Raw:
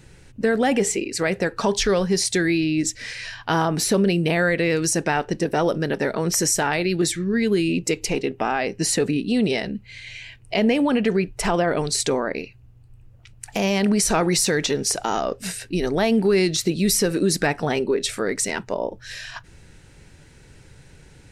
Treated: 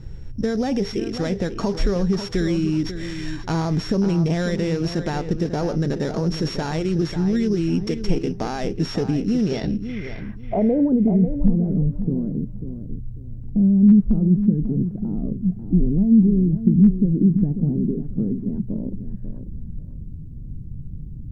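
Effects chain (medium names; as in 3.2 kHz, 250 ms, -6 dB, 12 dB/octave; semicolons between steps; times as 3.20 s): sorted samples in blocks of 8 samples; in parallel at -1 dB: peak limiter -16.5 dBFS, peak gain reduction 8.5 dB; on the sum: compression 2:1, threshold -20 dBFS, peak gain reduction 5 dB; low-pass sweep 7.3 kHz -> 220 Hz, 9.41–11.23 s; RIAA curve playback; word length cut 12-bit, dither none; on a send: filtered feedback delay 543 ms, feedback 24%, low-pass 4.1 kHz, level -10 dB; on the sum: trim -6.5 dB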